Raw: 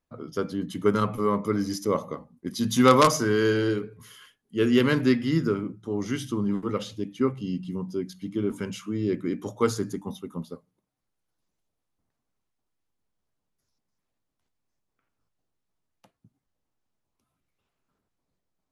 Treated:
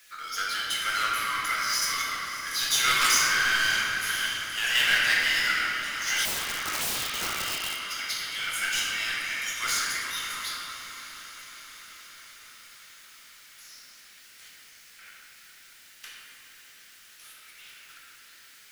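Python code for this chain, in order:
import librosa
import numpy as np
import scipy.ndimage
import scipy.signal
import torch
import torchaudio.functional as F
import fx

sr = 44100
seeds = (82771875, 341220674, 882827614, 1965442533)

y = scipy.signal.sosfilt(scipy.signal.butter(8, 1500.0, 'highpass', fs=sr, output='sos'), x)
y = fx.level_steps(y, sr, step_db=11)
y = fx.power_curve(y, sr, exponent=0.5)
y = fx.echo_diffused(y, sr, ms=589, feedback_pct=66, wet_db=-13)
y = fx.room_shoebox(y, sr, seeds[0], volume_m3=140.0, walls='hard', distance_m=0.79)
y = fx.overflow_wrap(y, sr, gain_db=24.0, at=(6.25, 7.81))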